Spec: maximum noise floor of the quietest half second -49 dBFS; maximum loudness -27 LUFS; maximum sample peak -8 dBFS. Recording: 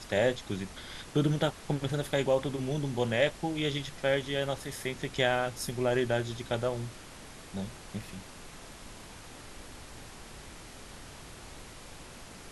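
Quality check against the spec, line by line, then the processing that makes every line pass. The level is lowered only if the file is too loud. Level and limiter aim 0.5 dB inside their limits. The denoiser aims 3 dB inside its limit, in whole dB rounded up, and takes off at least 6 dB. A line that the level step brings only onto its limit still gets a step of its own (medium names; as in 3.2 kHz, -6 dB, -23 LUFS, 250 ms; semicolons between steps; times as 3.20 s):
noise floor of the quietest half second -48 dBFS: fail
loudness -31.5 LUFS: pass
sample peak -13.0 dBFS: pass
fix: noise reduction 6 dB, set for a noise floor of -48 dBFS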